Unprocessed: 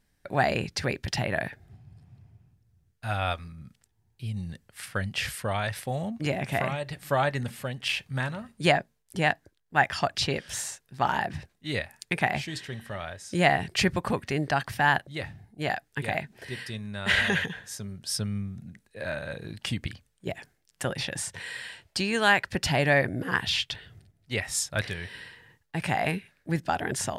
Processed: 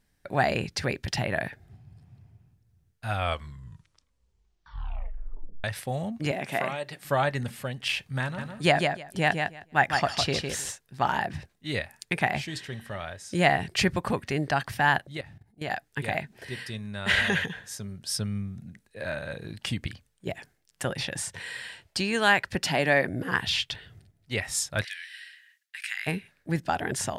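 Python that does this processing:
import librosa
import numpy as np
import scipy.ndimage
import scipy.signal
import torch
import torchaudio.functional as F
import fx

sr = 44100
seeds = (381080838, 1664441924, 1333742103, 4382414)

y = fx.highpass(x, sr, hz=220.0, slope=12, at=(6.31, 7.05))
y = fx.echo_feedback(y, sr, ms=156, feedback_pct=15, wet_db=-5, at=(8.37, 10.71), fade=0.02)
y = fx.level_steps(y, sr, step_db=16, at=(15.17, 15.71))
y = fx.highpass(y, sr, hz=160.0, slope=24, at=(22.63, 23.08))
y = fx.steep_highpass(y, sr, hz=1600.0, slope=36, at=(24.83, 26.06), fade=0.02)
y = fx.edit(y, sr, fx.tape_stop(start_s=3.13, length_s=2.51), tone=tone)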